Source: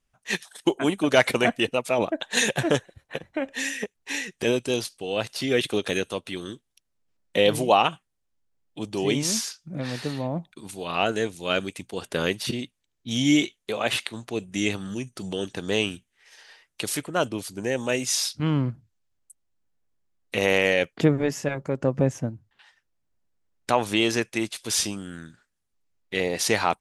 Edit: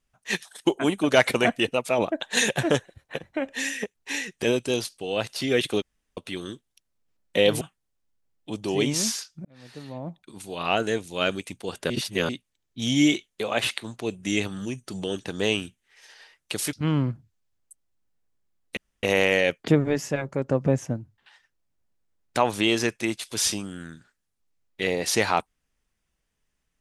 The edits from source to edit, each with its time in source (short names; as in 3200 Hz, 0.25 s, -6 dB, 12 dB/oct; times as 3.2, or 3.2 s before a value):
5.82–6.17 room tone
7.61–7.9 cut
9.74–10.95 fade in linear
12.19–12.58 reverse
17.02–18.32 cut
20.36 insert room tone 0.26 s